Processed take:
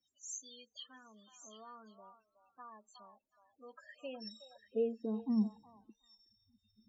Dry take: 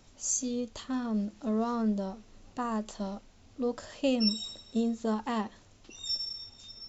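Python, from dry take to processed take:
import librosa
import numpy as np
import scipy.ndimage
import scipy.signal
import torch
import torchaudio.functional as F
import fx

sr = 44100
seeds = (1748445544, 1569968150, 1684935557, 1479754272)

y = fx.high_shelf(x, sr, hz=2500.0, db=6.5)
y = fx.spec_topn(y, sr, count=16)
y = fx.filter_sweep_bandpass(y, sr, from_hz=2800.0, to_hz=210.0, start_s=3.49, end_s=5.37, q=5.1)
y = fx.echo_stepped(y, sr, ms=368, hz=910.0, octaves=1.4, feedback_pct=70, wet_db=-6.5)
y = y * librosa.db_to_amplitude(4.0)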